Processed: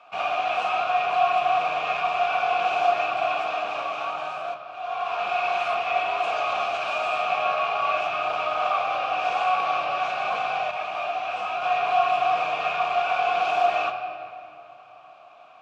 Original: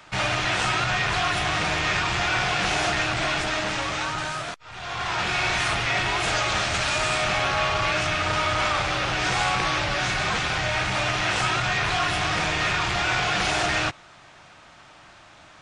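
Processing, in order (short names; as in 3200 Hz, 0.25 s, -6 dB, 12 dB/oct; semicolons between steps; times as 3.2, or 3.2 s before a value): vowel filter a; low shelf 110 Hz -4.5 dB; on a send at -3 dB: reverb RT60 2.7 s, pre-delay 4 ms; 10.71–11.62 on the sum: detuned doubles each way 25 cents; gain +7.5 dB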